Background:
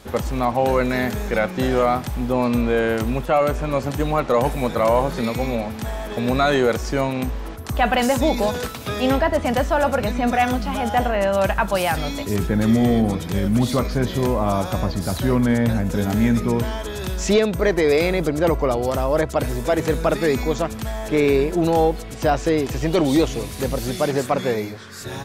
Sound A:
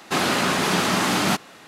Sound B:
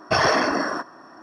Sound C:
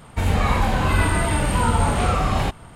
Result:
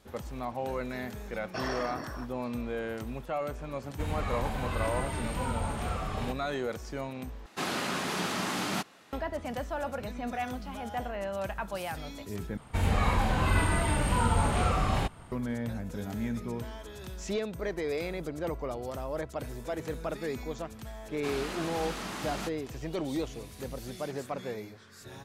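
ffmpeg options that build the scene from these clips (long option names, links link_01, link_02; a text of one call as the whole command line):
ffmpeg -i bed.wav -i cue0.wav -i cue1.wav -i cue2.wav -filter_complex "[3:a]asplit=2[link_01][link_02];[1:a]asplit=2[link_03][link_04];[0:a]volume=-15.5dB,asplit=3[link_05][link_06][link_07];[link_05]atrim=end=7.464[link_08];[link_03]atrim=end=1.67,asetpts=PTS-STARTPTS,volume=-11dB[link_09];[link_06]atrim=start=9.126:end=12.574[link_10];[link_02]atrim=end=2.75,asetpts=PTS-STARTPTS,volume=-7dB[link_11];[link_07]atrim=start=15.316[link_12];[2:a]atrim=end=1.22,asetpts=PTS-STARTPTS,volume=-17dB,afade=type=in:duration=0.004:curve=hsin,afade=type=out:start_time=1.216:duration=0.004:curve=hsin,adelay=1430[link_13];[link_01]atrim=end=2.75,asetpts=PTS-STARTPTS,volume=-14dB,afade=type=in:duration=0.004:curve=hsin,afade=type=out:start_time=2.746:duration=0.004:curve=hsin,adelay=3820[link_14];[link_04]atrim=end=1.67,asetpts=PTS-STARTPTS,volume=-17dB,afade=type=in:duration=0.004:curve=hsin,afade=type=out:start_time=1.666:duration=0.004:curve=hsin,adelay=21120[link_15];[link_08][link_09]acrossfade=duration=0.004:curve1=hsin:curve2=hsin[link_16];[link_16][link_10]acrossfade=duration=0.004:curve1=hsin:curve2=hsin[link_17];[link_17][link_11]acrossfade=duration=0.004:curve1=hsin:curve2=hsin[link_18];[link_18][link_12]acrossfade=duration=0.004:curve1=hsin:curve2=hsin[link_19];[link_19][link_13][link_14][link_15]amix=inputs=4:normalize=0" out.wav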